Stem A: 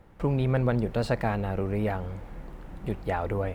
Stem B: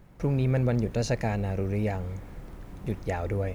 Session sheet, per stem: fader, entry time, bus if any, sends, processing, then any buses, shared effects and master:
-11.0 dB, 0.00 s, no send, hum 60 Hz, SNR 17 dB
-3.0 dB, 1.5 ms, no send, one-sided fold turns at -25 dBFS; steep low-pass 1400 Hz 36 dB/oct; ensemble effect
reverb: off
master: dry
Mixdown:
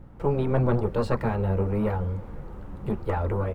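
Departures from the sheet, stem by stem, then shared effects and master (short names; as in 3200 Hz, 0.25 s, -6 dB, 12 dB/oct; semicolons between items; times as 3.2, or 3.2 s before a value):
stem A -11.0 dB -> -4.0 dB; stem B -3.0 dB -> +6.5 dB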